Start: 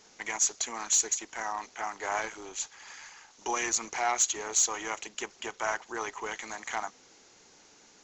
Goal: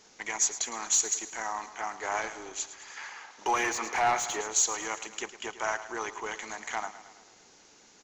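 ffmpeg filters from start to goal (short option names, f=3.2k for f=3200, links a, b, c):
-filter_complex "[0:a]aecho=1:1:109|218|327|436|545|654:0.2|0.116|0.0671|0.0389|0.0226|0.0131,asettb=1/sr,asplit=3[a][b][c];[a]atrim=end=2.964[d];[b]atrim=start=2.96:end=4.41,asetpts=PTS-STARTPTS,afade=t=in:d=0.004:c=qsin,afade=t=out:st=1.446:d=0.004:c=qsin,asplit=2[e][f];[f]highpass=f=720:p=1,volume=17dB,asoftclip=type=tanh:threshold=-15dB[g];[e][g]amix=inputs=2:normalize=0,lowpass=f=1.5k:p=1,volume=-6dB[h];[c]atrim=start=4.406[i];[d][h]acrossfade=d=0.004:c1=hsin:c2=qsin[j];[j][i]acrossfade=d=0.004:c1=qsin:c2=hsin"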